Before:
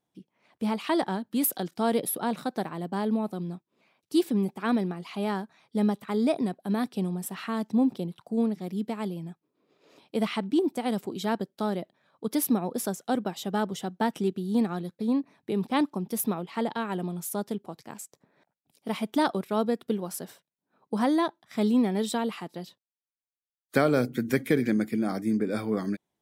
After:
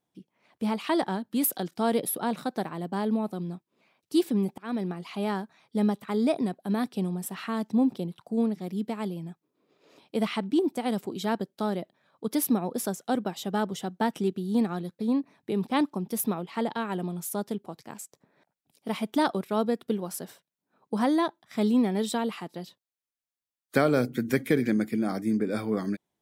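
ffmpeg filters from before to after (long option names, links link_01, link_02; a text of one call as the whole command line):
ffmpeg -i in.wav -filter_complex "[0:a]asplit=2[link_01][link_02];[link_01]atrim=end=4.58,asetpts=PTS-STARTPTS,afade=type=out:start_time=4.576:duration=0.004:curve=hsin:silence=0.0841395[link_03];[link_02]atrim=start=4.58,asetpts=PTS-STARTPTS,afade=type=in:duration=0.33:silence=0.0841395[link_04];[link_03][link_04]concat=n=2:v=0:a=1" out.wav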